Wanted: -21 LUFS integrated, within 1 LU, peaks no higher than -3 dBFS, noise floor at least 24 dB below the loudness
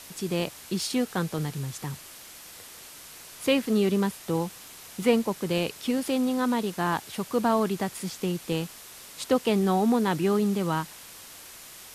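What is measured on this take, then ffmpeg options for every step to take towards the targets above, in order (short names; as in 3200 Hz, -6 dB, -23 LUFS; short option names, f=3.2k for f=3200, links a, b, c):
noise floor -46 dBFS; noise floor target -51 dBFS; loudness -27.0 LUFS; peak -9.5 dBFS; loudness target -21.0 LUFS
-> -af "afftdn=nr=6:nf=-46"
-af "volume=6dB"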